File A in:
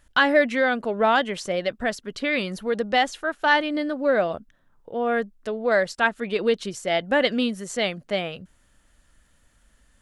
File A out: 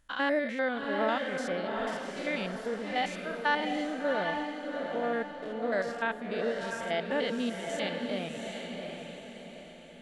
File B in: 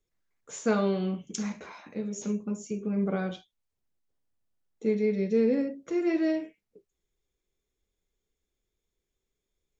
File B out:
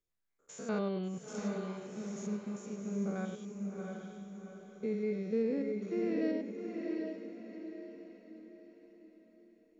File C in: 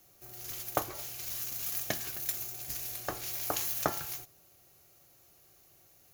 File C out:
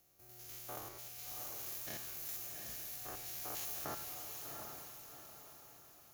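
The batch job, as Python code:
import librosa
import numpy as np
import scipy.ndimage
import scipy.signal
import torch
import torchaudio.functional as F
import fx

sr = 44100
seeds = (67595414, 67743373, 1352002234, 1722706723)

y = fx.spec_steps(x, sr, hold_ms=100)
y = fx.echo_diffused(y, sr, ms=735, feedback_pct=44, wet_db=-4.0)
y = F.gain(torch.from_numpy(y), -7.5).numpy()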